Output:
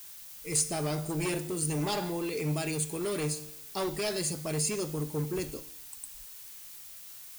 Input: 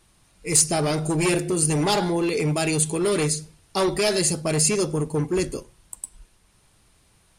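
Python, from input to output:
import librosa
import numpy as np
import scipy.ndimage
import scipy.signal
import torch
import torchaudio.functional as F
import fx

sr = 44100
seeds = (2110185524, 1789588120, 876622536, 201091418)

y = fx.dmg_noise_colour(x, sr, seeds[0], colour='blue', level_db=-37.0)
y = fx.comb_fb(y, sr, f0_hz=150.0, decay_s=0.83, harmonics='all', damping=0.0, mix_pct=60)
y = y * 10.0 ** (-3.0 / 20.0)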